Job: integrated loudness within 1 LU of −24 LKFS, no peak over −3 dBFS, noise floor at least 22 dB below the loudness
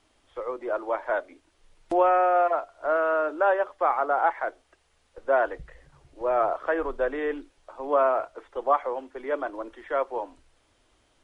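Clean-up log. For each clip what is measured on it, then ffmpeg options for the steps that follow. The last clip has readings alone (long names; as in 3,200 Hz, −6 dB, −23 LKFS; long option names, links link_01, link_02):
integrated loudness −26.0 LKFS; sample peak −9.5 dBFS; target loudness −24.0 LKFS
→ -af "volume=2dB"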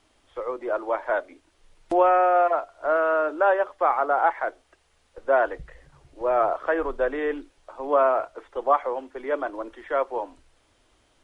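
integrated loudness −24.0 LKFS; sample peak −7.5 dBFS; background noise floor −65 dBFS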